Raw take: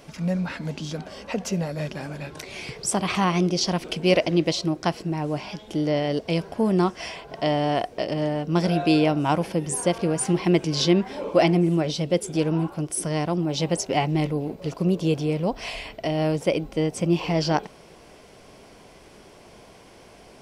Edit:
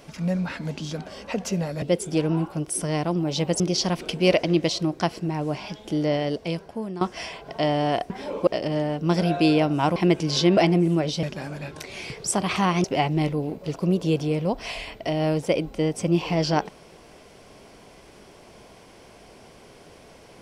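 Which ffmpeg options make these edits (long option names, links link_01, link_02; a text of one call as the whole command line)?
ffmpeg -i in.wav -filter_complex "[0:a]asplit=10[link_01][link_02][link_03][link_04][link_05][link_06][link_07][link_08][link_09][link_10];[link_01]atrim=end=1.822[link_11];[link_02]atrim=start=12.038:end=13.822[link_12];[link_03]atrim=start=3.428:end=6.84,asetpts=PTS-STARTPTS,afade=type=out:start_time=2.552:duration=0.86:silence=0.158489[link_13];[link_04]atrim=start=6.84:end=7.932,asetpts=PTS-STARTPTS,afade=type=in:duration=0.004:curve=hsin:silence=0.158489[link_14];[link_05]atrim=start=11.008:end=11.382[link_15];[link_06]atrim=start=7.928:end=9.422[link_16];[link_07]atrim=start=10.398:end=11.012[link_17];[link_08]atrim=start=11.378:end=12.042[link_18];[link_09]atrim=start=1.818:end=3.432[link_19];[link_10]atrim=start=13.818[link_20];[link_11][link_12]acrossfade=duration=0.004:curve1=hsin:curve2=hsin[link_21];[link_13][link_14]concat=n=2:v=0:a=1[link_22];[link_21][link_22]acrossfade=duration=0.004:curve1=hsin:curve2=hsin[link_23];[link_23][link_15]acrossfade=duration=0.004:curve1=hsin:curve2=hsin[link_24];[link_24][link_16]acrossfade=duration=0.004:curve1=hsin:curve2=hsin[link_25];[link_25][link_17]acrossfade=duration=0.004:curve1=hsin:curve2=hsin[link_26];[link_26][link_18]acrossfade=duration=0.004:curve1=hsin:curve2=hsin[link_27];[link_27][link_19]acrossfade=duration=0.004:curve1=hsin:curve2=hsin[link_28];[link_28][link_20]acrossfade=duration=0.004:curve1=hsin:curve2=hsin" out.wav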